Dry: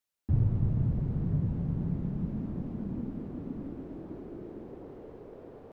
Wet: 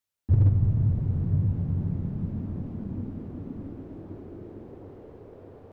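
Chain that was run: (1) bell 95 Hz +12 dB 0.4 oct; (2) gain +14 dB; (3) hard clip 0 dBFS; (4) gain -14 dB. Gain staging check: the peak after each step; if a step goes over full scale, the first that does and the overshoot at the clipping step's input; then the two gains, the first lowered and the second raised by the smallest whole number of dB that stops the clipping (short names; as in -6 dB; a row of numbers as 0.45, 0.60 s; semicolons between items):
-10.5, +3.5, 0.0, -14.0 dBFS; step 2, 3.5 dB; step 2 +10 dB, step 4 -10 dB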